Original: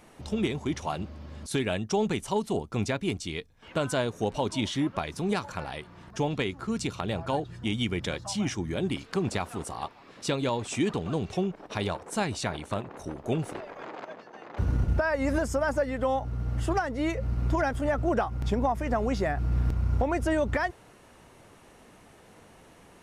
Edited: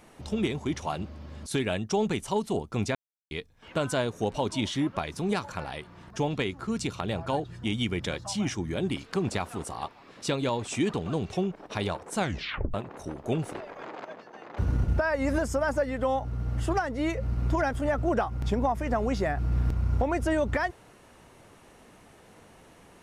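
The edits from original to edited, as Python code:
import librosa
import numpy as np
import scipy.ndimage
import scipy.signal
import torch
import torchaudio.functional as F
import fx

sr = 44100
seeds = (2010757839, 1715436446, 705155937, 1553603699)

y = fx.edit(x, sr, fx.silence(start_s=2.95, length_s=0.36),
    fx.tape_stop(start_s=12.18, length_s=0.56), tone=tone)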